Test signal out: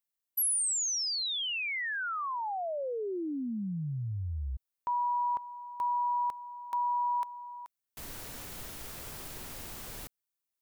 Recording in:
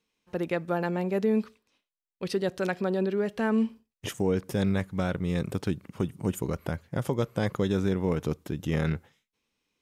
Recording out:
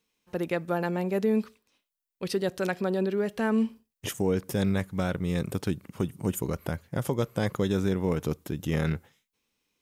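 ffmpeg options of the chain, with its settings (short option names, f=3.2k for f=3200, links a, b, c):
-af "highshelf=f=9.2k:g=10"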